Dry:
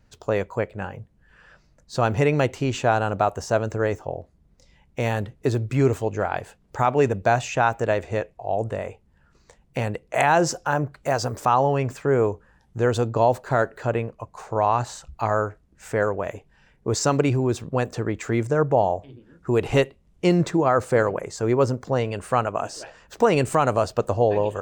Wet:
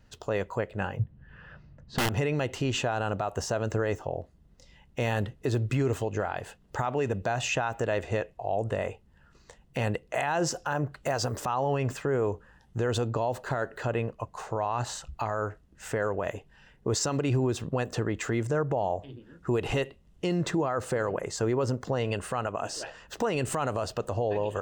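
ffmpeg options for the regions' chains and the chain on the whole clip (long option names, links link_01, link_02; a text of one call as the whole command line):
ffmpeg -i in.wav -filter_complex "[0:a]asettb=1/sr,asplit=3[link_01][link_02][link_03];[link_01]atrim=end=0.994[link_04];[link_02]atrim=start=0.99:end=2.09,asetpts=PTS-STARTPTS,afade=type=in:duration=0.004:curve=qsin,afade=type=out:start_time=1.096:duration=0.004:curve=qsin,lowpass=2800,equalizer=frequency=110:width=0.69:gain=13,aeval=exprs='(mod(2.82*val(0)+1,2)-1)/2.82':channel_layout=same[link_05];[link_03]atrim=start=2.086[link_06];[link_04][link_05]acrossfade=duration=0.004:curve1=hsin:curve2=qsin[link_07];[link_07][link_06]acrossfade=duration=0.004:curve1=qsin:curve2=hsin,equalizer=frequency=2600:width_type=o:width=0.97:gain=5,bandreject=frequency=2300:width=6.6,alimiter=limit=-19dB:level=0:latency=1:release=103" out.wav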